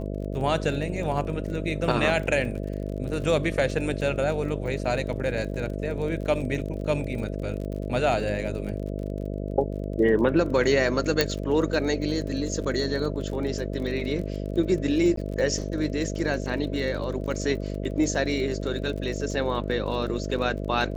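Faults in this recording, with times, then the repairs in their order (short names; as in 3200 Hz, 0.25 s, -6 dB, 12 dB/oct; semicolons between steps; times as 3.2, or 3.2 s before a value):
buzz 50 Hz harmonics 13 -31 dBFS
crackle 36/s -34 dBFS
11.21 pop -6 dBFS
15.16–15.17 gap 13 ms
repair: de-click; de-hum 50 Hz, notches 13; interpolate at 15.16, 13 ms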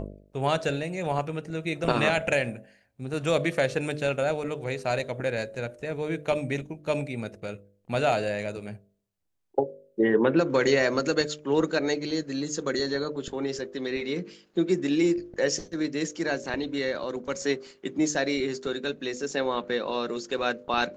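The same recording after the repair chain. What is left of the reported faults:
none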